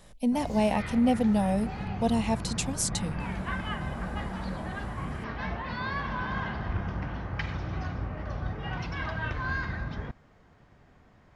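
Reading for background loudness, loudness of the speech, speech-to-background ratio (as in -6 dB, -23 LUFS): -34.5 LUFS, -28.0 LUFS, 6.5 dB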